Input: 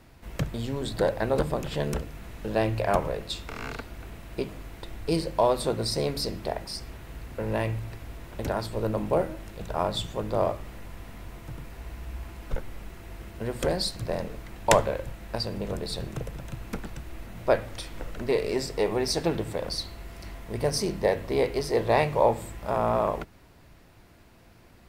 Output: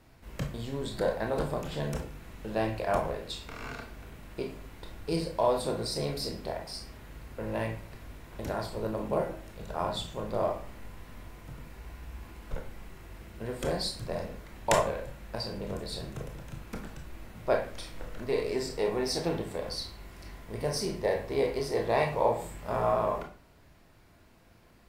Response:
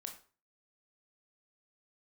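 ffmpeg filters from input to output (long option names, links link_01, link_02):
-filter_complex "[0:a]asettb=1/sr,asplit=3[link_01][link_02][link_03];[link_01]atrim=end=22.364[link_04];[link_02]atrim=start=22.36:end=22.93,asetpts=PTS-STARTPTS,afade=type=in:duration=0.004:curve=qsin,afade=type=out:start_time=0.566:duration=0.004:curve=qsin,asplit=2[link_05][link_06];[link_06]adelay=24,volume=-4dB[link_07];[link_05][link_07]amix=inputs=2:normalize=0,atrim=end_sample=25137[link_08];[link_03]atrim=start=22.926[link_09];[link_04][link_08]acrossfade=duration=0.004:curve1=hsin:curve2=qsin[link_10];[link_10][link_09]acrossfade=duration=0.004:curve1=qsin:curve2=hsin[link_11];[1:a]atrim=start_sample=2205[link_12];[link_11][link_12]afir=irnorm=-1:irlink=0"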